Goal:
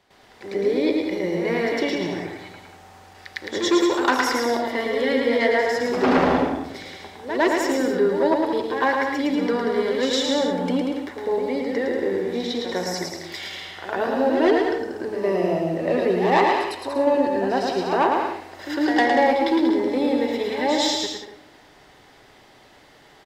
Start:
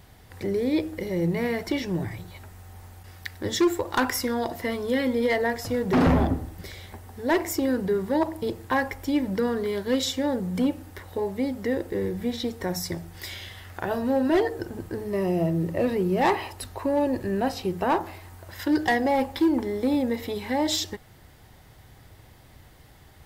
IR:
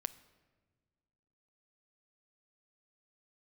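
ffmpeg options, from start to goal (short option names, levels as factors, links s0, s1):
-filter_complex "[0:a]acrossover=split=250 7100:gain=0.112 1 0.141[s0][s1][s2];[s0][s1][s2]amix=inputs=3:normalize=0,aecho=1:1:110|187|240.9|278.6|305:0.631|0.398|0.251|0.158|0.1,asplit=2[s3][s4];[1:a]atrim=start_sample=2205,adelay=105[s5];[s4][s5]afir=irnorm=-1:irlink=0,volume=3.55[s6];[s3][s6]amix=inputs=2:normalize=0,volume=0.501"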